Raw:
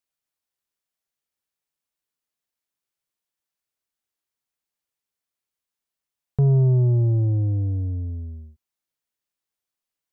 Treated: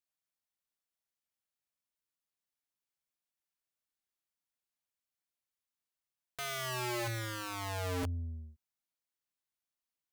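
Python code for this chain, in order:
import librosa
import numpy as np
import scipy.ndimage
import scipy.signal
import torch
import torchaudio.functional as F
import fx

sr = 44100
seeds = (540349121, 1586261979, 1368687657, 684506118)

y = fx.peak_eq(x, sr, hz=420.0, db=-6.0, octaves=0.3)
y = (np.mod(10.0 ** (26.0 / 20.0) * y + 1.0, 2.0) - 1.0) / 10.0 ** (26.0 / 20.0)
y = F.gain(torch.from_numpy(y), -6.5).numpy()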